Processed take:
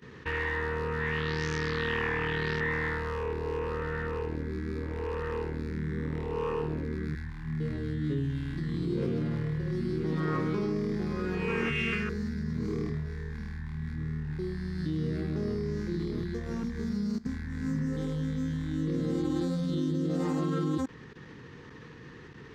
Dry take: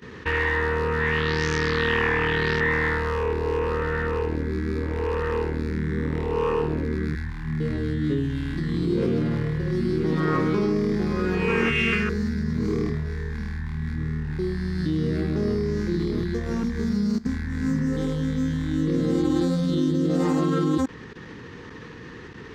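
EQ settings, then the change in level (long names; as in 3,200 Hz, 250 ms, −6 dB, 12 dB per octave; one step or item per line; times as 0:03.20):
parametric band 140 Hz +6 dB 0.29 octaves
−8.0 dB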